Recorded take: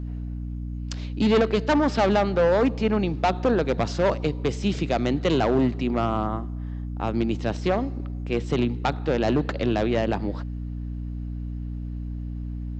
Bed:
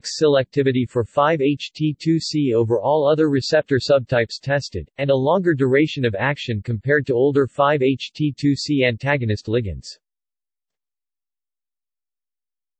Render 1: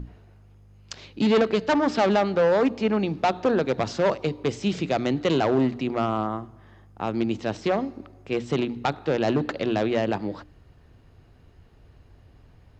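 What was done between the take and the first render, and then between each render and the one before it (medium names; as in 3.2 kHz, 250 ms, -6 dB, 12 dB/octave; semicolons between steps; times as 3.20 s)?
hum notches 60/120/180/240/300 Hz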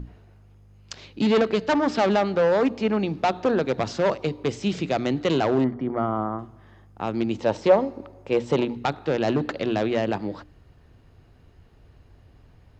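5.64–6.39 s: Savitzky-Golay filter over 41 samples; 7.40–8.77 s: small resonant body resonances 540/890 Hz, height 11 dB, ringing for 25 ms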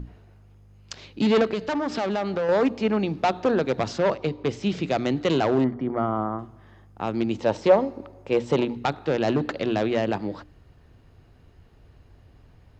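1.53–2.49 s: compression 4:1, threshold -23 dBFS; 3.98–4.83 s: distance through air 65 m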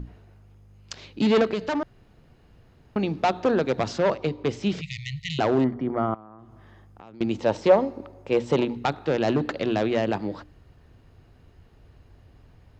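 1.83–2.96 s: room tone; 4.81–5.39 s: brick-wall FIR band-stop 170–1800 Hz; 6.14–7.21 s: compression 5:1, threshold -44 dBFS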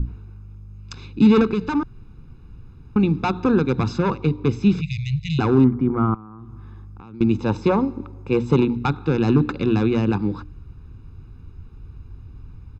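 tilt EQ -2 dB/octave; comb 0.8 ms, depth 95%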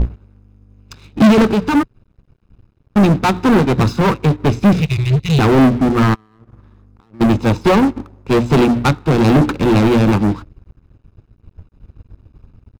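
waveshaping leveller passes 5; upward expansion 2.5:1, over -25 dBFS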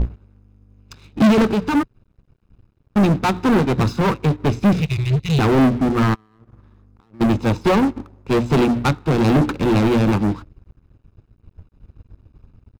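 trim -4 dB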